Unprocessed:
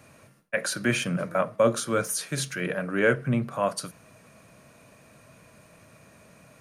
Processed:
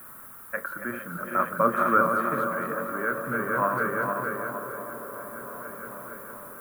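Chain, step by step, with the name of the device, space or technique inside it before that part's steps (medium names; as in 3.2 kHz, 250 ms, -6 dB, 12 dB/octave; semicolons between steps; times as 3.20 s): backward echo that repeats 230 ms, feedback 82%, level -6 dB; shortwave radio (band-pass 260–2900 Hz; tremolo 0.5 Hz, depth 65%; white noise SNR 17 dB); FFT filter 200 Hz 0 dB, 680 Hz -8 dB, 1.3 kHz +8 dB, 2.6 kHz -17 dB, 5.6 kHz -25 dB, 11 kHz +1 dB; feedback echo behind a band-pass 387 ms, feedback 77%, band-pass 490 Hz, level -9 dB; trim +4 dB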